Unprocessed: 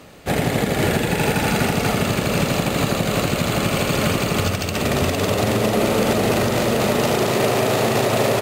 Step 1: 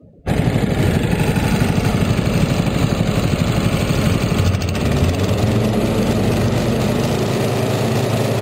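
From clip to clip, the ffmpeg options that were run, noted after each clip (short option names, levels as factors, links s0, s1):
-filter_complex "[0:a]afftdn=nr=31:nf=-37,lowshelf=f=210:g=9.5,acrossover=split=310|3000[s0][s1][s2];[s1]acompressor=threshold=0.0708:ratio=2[s3];[s0][s3][s2]amix=inputs=3:normalize=0"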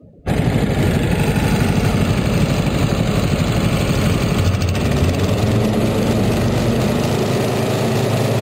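-filter_complex "[0:a]asplit=2[s0][s1];[s1]asoftclip=type=tanh:threshold=0.112,volume=0.376[s2];[s0][s2]amix=inputs=2:normalize=0,aecho=1:1:224:0.282,volume=0.841"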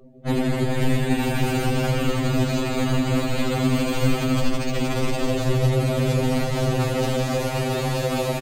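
-af "aeval=exprs='val(0)*sin(2*PI*86*n/s)':c=same,aecho=1:1:161:0.355,afftfilt=real='re*2.45*eq(mod(b,6),0)':imag='im*2.45*eq(mod(b,6),0)':win_size=2048:overlap=0.75"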